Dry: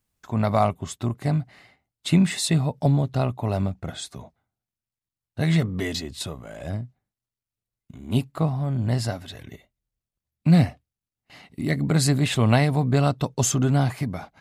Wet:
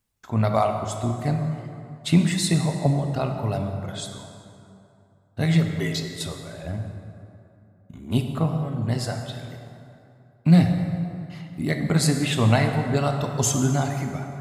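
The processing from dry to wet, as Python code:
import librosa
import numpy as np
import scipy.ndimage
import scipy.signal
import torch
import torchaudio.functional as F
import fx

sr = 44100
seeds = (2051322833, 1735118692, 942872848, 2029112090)

y = fx.dereverb_blind(x, sr, rt60_s=1.9)
y = fx.rev_plate(y, sr, seeds[0], rt60_s=2.8, hf_ratio=0.55, predelay_ms=0, drr_db=3.5)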